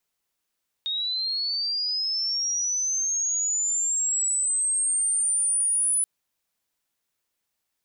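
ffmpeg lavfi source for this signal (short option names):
-f lavfi -i "aevalsrc='pow(10,(-25+5*t/5.18)/20)*sin(2*PI*(3700*t+6300*t*t/(2*5.18)))':d=5.18:s=44100"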